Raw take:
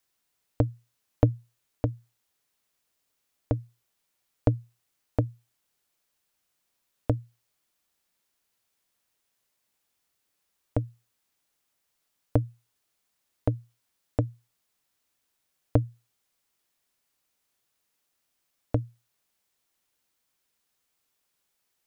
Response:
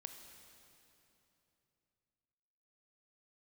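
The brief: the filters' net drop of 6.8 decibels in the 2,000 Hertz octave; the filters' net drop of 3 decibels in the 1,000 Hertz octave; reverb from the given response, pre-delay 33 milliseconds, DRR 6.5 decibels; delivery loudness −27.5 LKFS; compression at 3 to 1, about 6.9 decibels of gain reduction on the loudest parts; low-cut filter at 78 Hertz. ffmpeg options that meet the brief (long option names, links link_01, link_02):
-filter_complex "[0:a]highpass=78,equalizer=frequency=1000:width_type=o:gain=-3,equalizer=frequency=2000:width_type=o:gain=-8,acompressor=threshold=-27dB:ratio=3,asplit=2[link_01][link_02];[1:a]atrim=start_sample=2205,adelay=33[link_03];[link_02][link_03]afir=irnorm=-1:irlink=0,volume=-1.5dB[link_04];[link_01][link_04]amix=inputs=2:normalize=0,volume=9.5dB"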